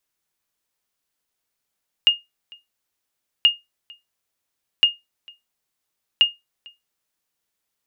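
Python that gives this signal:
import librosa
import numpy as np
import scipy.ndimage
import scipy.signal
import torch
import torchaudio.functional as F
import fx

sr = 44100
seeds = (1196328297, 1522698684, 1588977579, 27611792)

y = fx.sonar_ping(sr, hz=2840.0, decay_s=0.19, every_s=1.38, pings=4, echo_s=0.45, echo_db=-28.0, level_db=-6.0)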